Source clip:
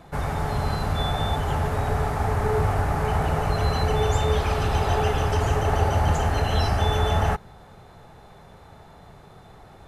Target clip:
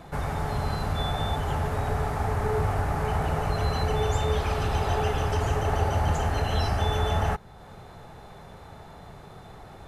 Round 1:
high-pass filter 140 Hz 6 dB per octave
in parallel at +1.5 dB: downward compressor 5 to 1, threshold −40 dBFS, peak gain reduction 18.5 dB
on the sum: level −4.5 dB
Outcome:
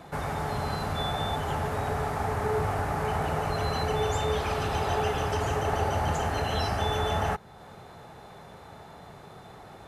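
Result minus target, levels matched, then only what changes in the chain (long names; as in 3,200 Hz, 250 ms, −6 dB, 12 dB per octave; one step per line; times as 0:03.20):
125 Hz band −3.0 dB
remove: high-pass filter 140 Hz 6 dB per octave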